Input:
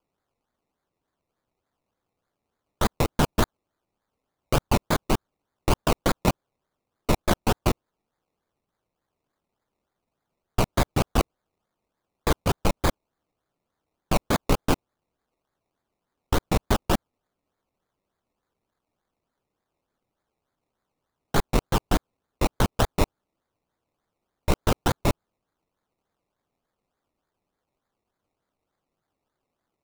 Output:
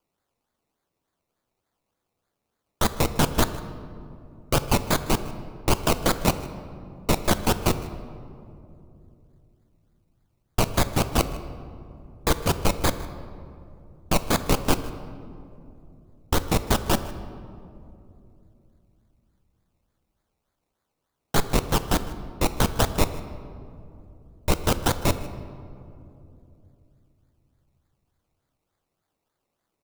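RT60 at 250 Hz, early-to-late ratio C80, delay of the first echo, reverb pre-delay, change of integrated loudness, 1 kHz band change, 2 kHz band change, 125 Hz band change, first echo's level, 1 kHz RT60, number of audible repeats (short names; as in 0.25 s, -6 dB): 3.8 s, 12.5 dB, 0.155 s, 6 ms, +1.0 dB, +0.5 dB, +1.5 dB, +0.5 dB, -19.5 dB, 2.4 s, 1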